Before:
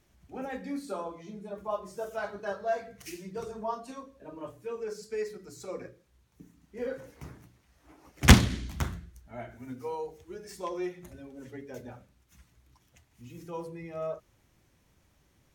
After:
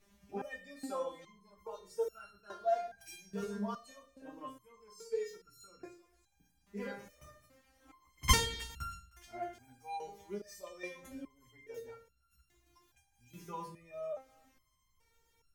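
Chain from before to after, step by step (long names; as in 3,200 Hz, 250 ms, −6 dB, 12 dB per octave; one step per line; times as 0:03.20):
feedback echo with a high-pass in the loop 311 ms, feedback 46%, high-pass 1,200 Hz, level −20 dB
step-sequenced resonator 2.4 Hz 200–1,400 Hz
level +13 dB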